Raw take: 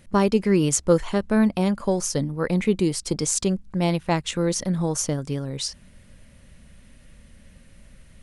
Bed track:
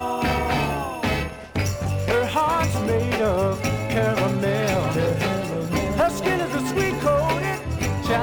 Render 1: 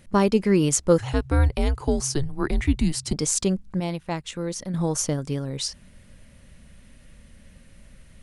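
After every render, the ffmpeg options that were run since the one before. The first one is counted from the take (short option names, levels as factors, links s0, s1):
-filter_complex "[0:a]asettb=1/sr,asplit=3[s0][s1][s2];[s0]atrim=end=0.984[s3];[s1]atrim=start=0.98:end=3.13,asetpts=PTS-STARTPTS,afade=t=in:d=0.004:c=qsin,afade=t=out:st=2.146:d=0.004:c=qsin,afreqshift=-140[s4];[s2]atrim=start=3.126[s5];[s3][s4]acrossfade=d=0.004:c1=hsin:c2=qsin[s6];[s6][s5]acrossfade=d=0.004:c1=qsin:c2=hsin,asplit=3[s7][s8][s9];[s7]atrim=end=3.802[s10];[s8]atrim=start=3.798:end=4.742,asetpts=PTS-STARTPTS,volume=0.473[s11];[s9]atrim=start=4.738[s12];[s10][s11]acrossfade=d=0.004:c1=hsin:c2=hsin[s13];[s13][s12]acrossfade=d=0.004:c1=hsin:c2=hsin"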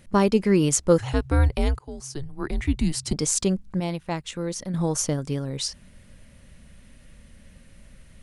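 -filter_complex "[0:a]asplit=2[s0][s1];[s0]atrim=end=1.79,asetpts=PTS-STARTPTS,afade=t=out:st=1.786:d=0.004:c=hsin:silence=0.0891251[s2];[s1]atrim=start=1.79,asetpts=PTS-STARTPTS,afade=t=in:d=1.22:silence=0.0891251[s3];[s2][s3]concat=n=2:v=0:a=1"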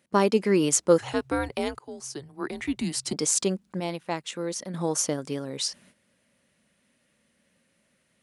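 -af "highpass=250,agate=range=0.282:threshold=0.002:ratio=16:detection=peak"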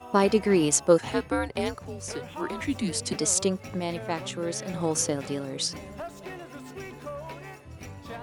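-filter_complex "[1:a]volume=0.126[s0];[0:a][s0]amix=inputs=2:normalize=0"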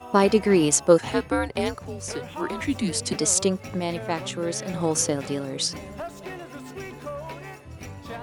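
-af "volume=1.41,alimiter=limit=0.708:level=0:latency=1"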